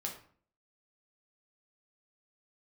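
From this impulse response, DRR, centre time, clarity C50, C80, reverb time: -0.5 dB, 22 ms, 7.5 dB, 11.5 dB, 0.50 s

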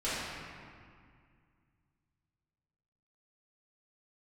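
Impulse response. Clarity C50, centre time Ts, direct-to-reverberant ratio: -4.0 dB, 149 ms, -12.5 dB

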